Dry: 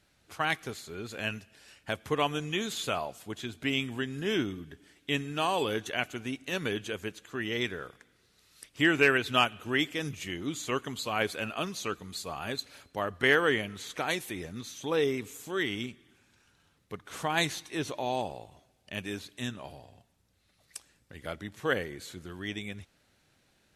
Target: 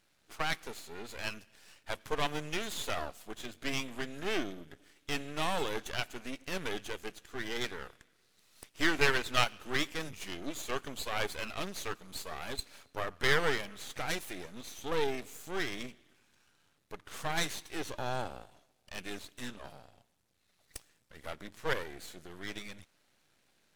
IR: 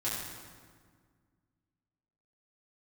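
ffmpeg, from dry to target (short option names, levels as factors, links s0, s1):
-af "lowshelf=f=130:g=-10,aeval=exprs='max(val(0),0)':c=same,volume=1.19"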